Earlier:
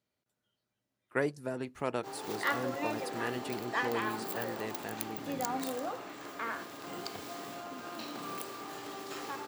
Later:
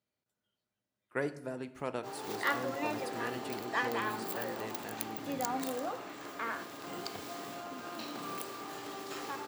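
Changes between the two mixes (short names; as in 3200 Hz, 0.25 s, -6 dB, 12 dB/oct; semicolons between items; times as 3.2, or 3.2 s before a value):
speech -4.0 dB; reverb: on, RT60 0.80 s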